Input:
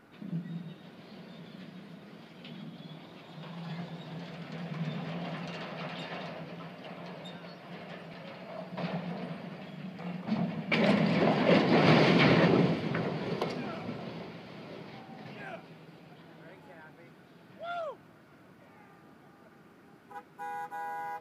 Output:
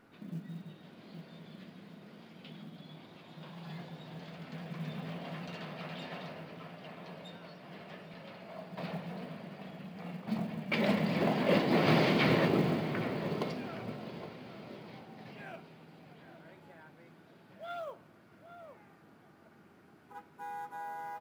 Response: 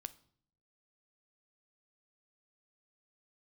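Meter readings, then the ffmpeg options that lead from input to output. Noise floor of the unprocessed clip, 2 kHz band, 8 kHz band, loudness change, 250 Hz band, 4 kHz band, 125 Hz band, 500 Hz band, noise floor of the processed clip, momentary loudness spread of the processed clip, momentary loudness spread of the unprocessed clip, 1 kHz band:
-57 dBFS, -4.0 dB, n/a, -4.0 dB, -3.5 dB, -4.0 dB, -4.0 dB, -3.5 dB, -60 dBFS, 24 LU, 23 LU, -3.5 dB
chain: -filter_complex "[0:a]asplit=2[a][b];[b]adelay=816.3,volume=-10dB,highshelf=f=4k:g=-18.4[c];[a][c]amix=inputs=2:normalize=0[d];[1:a]atrim=start_sample=2205[e];[d][e]afir=irnorm=-1:irlink=0,acrusher=bits=8:mode=log:mix=0:aa=0.000001"

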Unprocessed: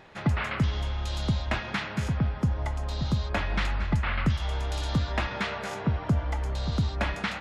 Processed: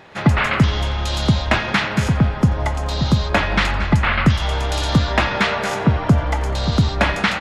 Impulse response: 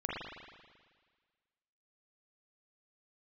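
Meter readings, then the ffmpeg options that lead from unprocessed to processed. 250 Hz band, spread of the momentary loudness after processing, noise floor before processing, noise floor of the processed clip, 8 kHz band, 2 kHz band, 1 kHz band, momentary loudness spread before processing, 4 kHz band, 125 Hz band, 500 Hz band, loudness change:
+11.5 dB, 5 LU, -37 dBFS, -26 dBFS, +12.5 dB, +12.5 dB, +12.5 dB, 4 LU, +12.5 dB, +9.5 dB, +12.5 dB, +10.5 dB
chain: -filter_complex "[0:a]dynaudnorm=f=100:g=3:m=5dB,highpass=f=94:p=1,asplit=2[a][b];[b]asplit=4[c][d][e][f];[c]adelay=87,afreqshift=-74,volume=-19dB[g];[d]adelay=174,afreqshift=-148,volume=-25.4dB[h];[e]adelay=261,afreqshift=-222,volume=-31.8dB[i];[f]adelay=348,afreqshift=-296,volume=-38.1dB[j];[g][h][i][j]amix=inputs=4:normalize=0[k];[a][k]amix=inputs=2:normalize=0,volume=7.5dB"

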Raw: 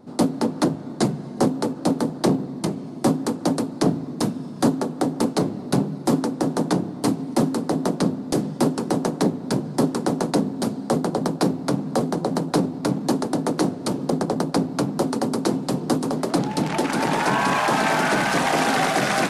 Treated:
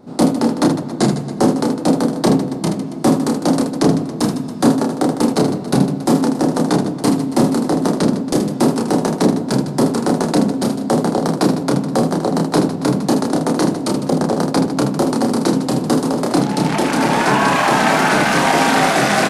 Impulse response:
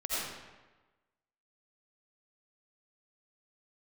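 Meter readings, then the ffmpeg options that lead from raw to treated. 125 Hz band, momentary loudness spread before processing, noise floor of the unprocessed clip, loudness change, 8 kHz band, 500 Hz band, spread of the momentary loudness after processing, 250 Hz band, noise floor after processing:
+6.0 dB, 5 LU, -34 dBFS, +6.5 dB, +6.0 dB, +6.0 dB, 4 LU, +7.0 dB, -26 dBFS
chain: -af "aecho=1:1:30|78|154.8|277.7|474.3:0.631|0.398|0.251|0.158|0.1,volume=4dB"

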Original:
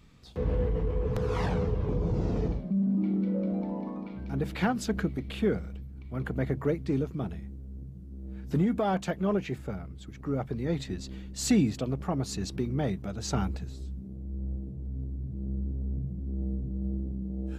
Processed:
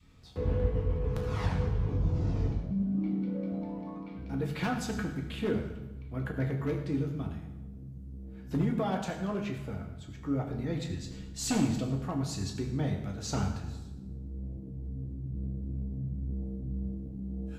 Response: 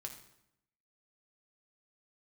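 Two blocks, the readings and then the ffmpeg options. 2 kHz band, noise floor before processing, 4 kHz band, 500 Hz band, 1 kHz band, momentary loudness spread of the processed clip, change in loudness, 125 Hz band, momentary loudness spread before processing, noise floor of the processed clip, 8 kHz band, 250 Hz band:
-2.0 dB, -44 dBFS, -1.5 dB, -4.5 dB, -3.0 dB, 11 LU, -2.5 dB, -1.0 dB, 12 LU, -44 dBFS, -1.5 dB, -3.0 dB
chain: -filter_complex "[0:a]aeval=exprs='0.119*(abs(mod(val(0)/0.119+3,4)-2)-1)':c=same,adynamicequalizer=threshold=0.00794:dfrequency=480:dqfactor=0.82:tfrequency=480:tqfactor=0.82:attack=5:release=100:ratio=0.375:range=3:mode=cutabove:tftype=bell[a];[1:a]atrim=start_sample=2205,asetrate=31752,aresample=44100[b];[a][b]afir=irnorm=-1:irlink=0"

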